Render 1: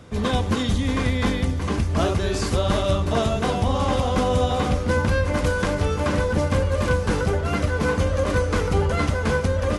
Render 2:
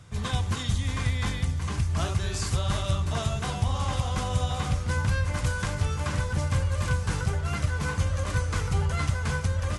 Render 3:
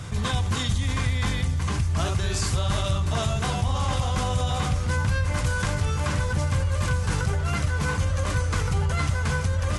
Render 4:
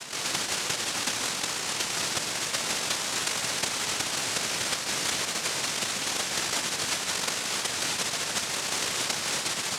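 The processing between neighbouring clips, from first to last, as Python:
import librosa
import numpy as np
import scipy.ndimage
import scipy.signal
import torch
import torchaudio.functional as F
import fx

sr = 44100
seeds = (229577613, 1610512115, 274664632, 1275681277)

y1 = fx.graphic_eq(x, sr, hz=(125, 250, 500, 8000), db=(8, -10, -8, 6))
y1 = F.gain(torch.from_numpy(y1), -5.5).numpy()
y2 = fx.env_flatten(y1, sr, amount_pct=50)
y3 = fx.noise_vocoder(y2, sr, seeds[0], bands=1)
y3 = y3 + 10.0 ** (-11.0 / 20.0) * np.pad(y3, (int(136 * sr / 1000.0), 0))[:len(y3)]
y3 = F.gain(torch.from_numpy(y3), -3.0).numpy()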